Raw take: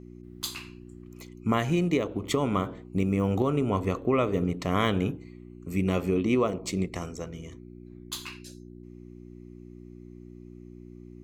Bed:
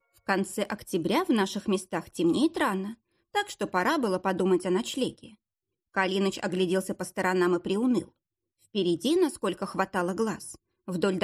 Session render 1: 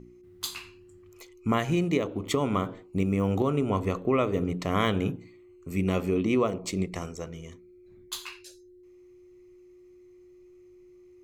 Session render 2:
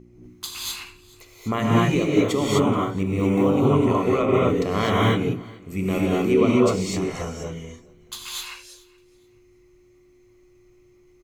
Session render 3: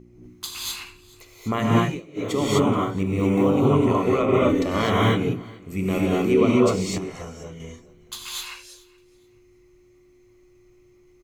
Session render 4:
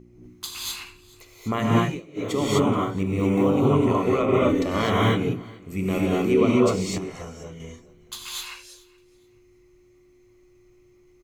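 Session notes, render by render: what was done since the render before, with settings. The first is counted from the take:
de-hum 60 Hz, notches 5
feedback delay 427 ms, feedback 23%, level -23.5 dB; gated-style reverb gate 280 ms rising, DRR -5.5 dB
1.77–2.39 s: dip -22.5 dB, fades 0.25 s; 4.40–4.82 s: comb 3.4 ms; 6.98–7.60 s: gain -6 dB
trim -1 dB

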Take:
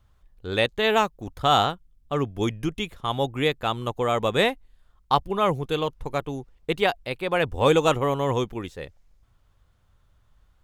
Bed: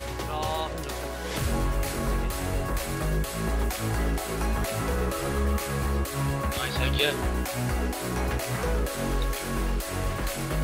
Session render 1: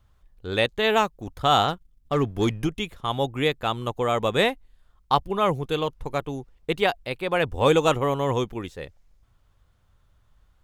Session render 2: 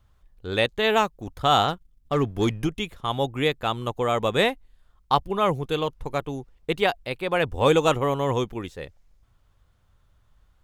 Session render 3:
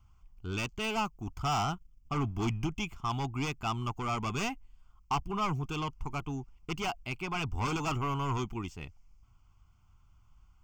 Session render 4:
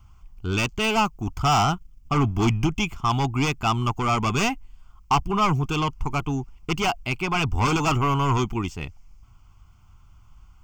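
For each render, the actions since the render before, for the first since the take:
1.68–2.67 s: waveshaping leveller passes 1
no audible change
saturation -23 dBFS, distortion -7 dB; static phaser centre 2.6 kHz, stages 8
trim +10.5 dB

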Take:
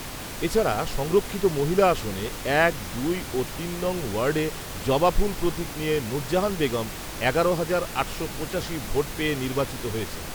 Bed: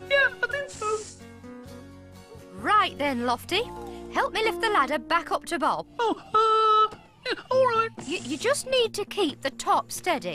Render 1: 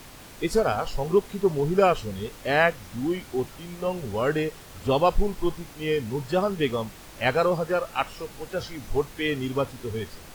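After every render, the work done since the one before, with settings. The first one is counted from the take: noise print and reduce 10 dB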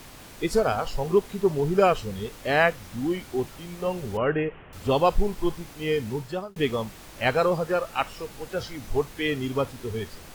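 4.17–4.73 s: steep low-pass 3 kHz 72 dB/octave; 6.11–6.56 s: fade out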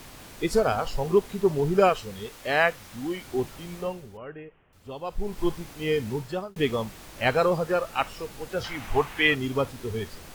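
1.89–3.25 s: bass shelf 400 Hz -7.5 dB; 3.77–5.41 s: dip -16 dB, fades 0.46 s quadratic; 8.64–9.35 s: high-order bell 1.5 kHz +9 dB 2.4 oct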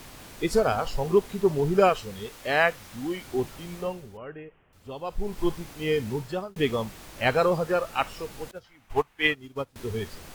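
8.51–9.76 s: upward expansion 2.5:1, over -33 dBFS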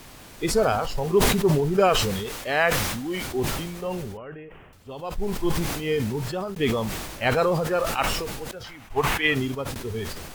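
decay stretcher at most 36 dB/s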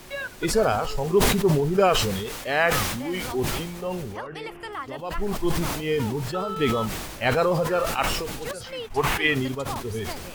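add bed -12 dB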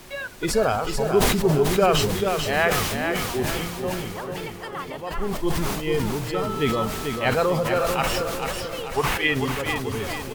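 feedback delay 440 ms, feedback 47%, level -6 dB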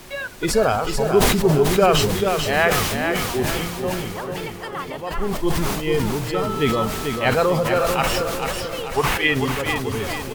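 trim +3 dB

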